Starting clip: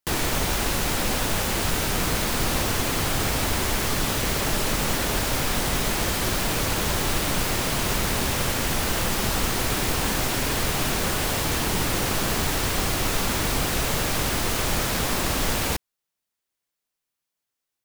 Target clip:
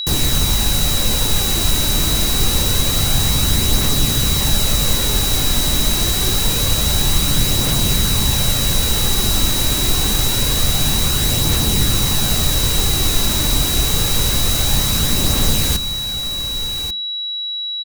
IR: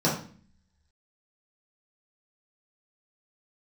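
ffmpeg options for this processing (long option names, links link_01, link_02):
-filter_complex "[0:a]bass=frequency=250:gain=10,treble=frequency=4000:gain=10,aecho=1:1:1140:0.299,aphaser=in_gain=1:out_gain=1:delay=3.4:decay=0.25:speed=0.26:type=triangular,aeval=exprs='val(0)+0.1*sin(2*PI*3900*n/s)':channel_layout=same,asplit=2[link_01][link_02];[1:a]atrim=start_sample=2205,afade=type=out:start_time=0.45:duration=0.01,atrim=end_sample=20286,asetrate=52920,aresample=44100[link_03];[link_02][link_03]afir=irnorm=-1:irlink=0,volume=-31dB[link_04];[link_01][link_04]amix=inputs=2:normalize=0,volume=-1.5dB"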